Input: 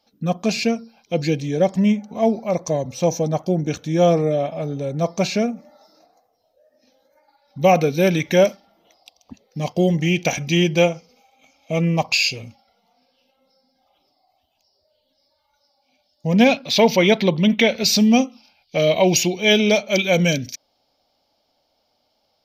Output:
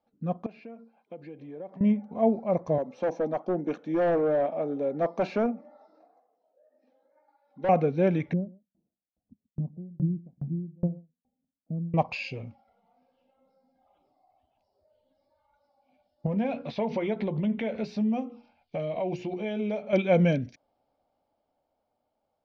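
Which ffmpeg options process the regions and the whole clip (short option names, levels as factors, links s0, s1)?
-filter_complex "[0:a]asettb=1/sr,asplit=3[s0][s1][s2];[s0]atrim=end=0.464[s3];[s1]atrim=start=0.46:end=1.81,asetpts=PTS-STARTPTS,afade=t=in:d=0.004:c=qsin,afade=t=out:st=1.346:d=0.004:c=qsin,acompressor=threshold=0.0447:ratio=16:attack=3.2:release=140:knee=1:detection=peak,highpass=260,lowpass=3700[s4];[s2]atrim=start=1.806[s5];[s3][s4]acrossfade=d=0.004:c1=hsin:c2=qsin[s6];[s6][s5]acrossfade=d=0.004:c1=qsin:c2=hsin,asettb=1/sr,asplit=3[s7][s8][s9];[s7]atrim=end=2.784[s10];[s8]atrim=start=2.78:end=7.69,asetpts=PTS-STARTPTS,afade=t=in:d=0.004:c=qsin,afade=t=out:st=4.906:d=0.004:c=qsin,highpass=f=230:w=0.5412,highpass=f=230:w=1.3066,asoftclip=type=hard:threshold=0.119[s11];[s9]atrim=start=7.686[s12];[s10][s11]acrossfade=d=0.004:c1=hsin:c2=qsin[s13];[s13][s12]acrossfade=d=0.004:c1=qsin:c2=hsin,asettb=1/sr,asplit=3[s14][s15][s16];[s14]atrim=end=8.334[s17];[s15]atrim=start=8.33:end=11.94,asetpts=PTS-STARTPTS,afade=t=in:d=0.004:c=qsin,afade=t=out:st=3.606:d=0.004:c=qsin,lowpass=f=210:t=q:w=1.7,aecho=1:1:133:0.237,atrim=end_sample=159201,aeval=exprs='val(0)*pow(10,-35*if(lt(mod(2.4*n/s,1),2*abs(2.4)/1000),1-mod(2.4*n/s,1)/(2*abs(2.4)/1000),(mod(2.4*n/s,1)-2*abs(2.4)/1000)/(1-2*abs(2.4)/1000))/20)':c=same[s18];[s16]atrim=start=11.936[s19];[s17][s18]acrossfade=d=0.004:c1=hsin:c2=qsin[s20];[s20][s19]acrossfade=d=0.004:c1=qsin:c2=hsin,asettb=1/sr,asplit=3[s21][s22][s23];[s21]atrim=end=16.264[s24];[s22]atrim=start=16.26:end=19.93,asetpts=PTS-STARTPTS,afade=t=in:d=0.004:c=qsin,afade=t=out:st=3.666:d=0.004:c=qsin,bandreject=f=60:t=h:w=6,bandreject=f=120:t=h:w=6,bandreject=f=180:t=h:w=6,bandreject=f=240:t=h:w=6,bandreject=f=300:t=h:w=6,bandreject=f=360:t=h:w=6,bandreject=f=420:t=h:w=6,bandreject=f=480:t=h:w=6,acompressor=threshold=0.0501:ratio=4:attack=3.2:release=140:knee=1:detection=peak,asplit=2[s25][s26];[s26]adelay=14,volume=0.299[s27];[s25][s27]amix=inputs=2:normalize=0,atrim=end_sample=161847[s28];[s23]atrim=start=19.926[s29];[s24][s28]acrossfade=d=0.004:c1=hsin:c2=qsin[s30];[s30][s29]acrossfade=d=0.004:c1=qsin:c2=hsin,lowpass=1400,dynaudnorm=f=220:g=17:m=2.51,volume=0.376"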